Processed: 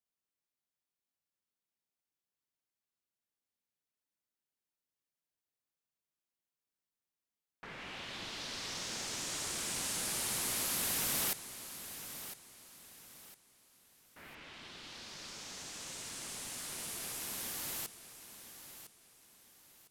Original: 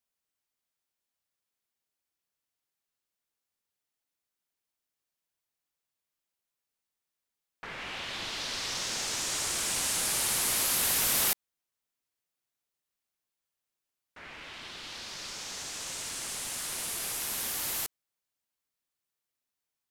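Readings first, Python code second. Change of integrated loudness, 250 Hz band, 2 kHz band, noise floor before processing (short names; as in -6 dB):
-8.0 dB, -2.5 dB, -7.0 dB, under -85 dBFS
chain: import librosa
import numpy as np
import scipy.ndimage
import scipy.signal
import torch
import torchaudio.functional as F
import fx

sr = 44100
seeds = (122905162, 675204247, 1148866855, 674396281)

p1 = fx.peak_eq(x, sr, hz=200.0, db=5.5, octaves=2.2)
p2 = p1 + fx.echo_feedback(p1, sr, ms=1006, feedback_pct=33, wet_db=-12.0, dry=0)
y = p2 * librosa.db_to_amplitude(-7.5)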